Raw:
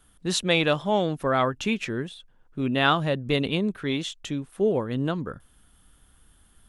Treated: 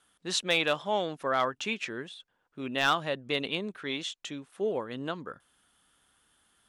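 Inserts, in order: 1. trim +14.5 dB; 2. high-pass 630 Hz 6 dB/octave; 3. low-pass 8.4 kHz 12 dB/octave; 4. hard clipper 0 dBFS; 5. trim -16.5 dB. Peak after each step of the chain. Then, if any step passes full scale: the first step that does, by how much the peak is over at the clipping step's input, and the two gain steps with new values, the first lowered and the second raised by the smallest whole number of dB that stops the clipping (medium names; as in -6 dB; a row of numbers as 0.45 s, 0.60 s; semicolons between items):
+6.5 dBFS, +7.5 dBFS, +7.5 dBFS, 0.0 dBFS, -16.5 dBFS; step 1, 7.5 dB; step 1 +6.5 dB, step 5 -8.5 dB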